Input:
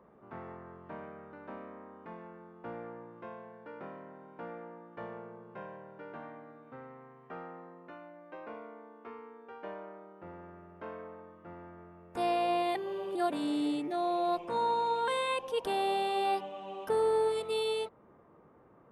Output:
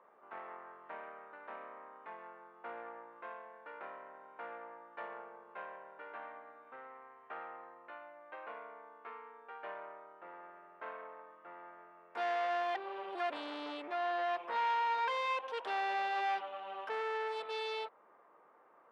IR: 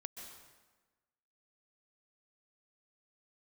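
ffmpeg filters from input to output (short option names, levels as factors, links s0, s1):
-af "aeval=exprs='(tanh(50.1*val(0)+0.65)-tanh(0.65))/50.1':c=same,highpass=760,lowpass=2900,volume=2"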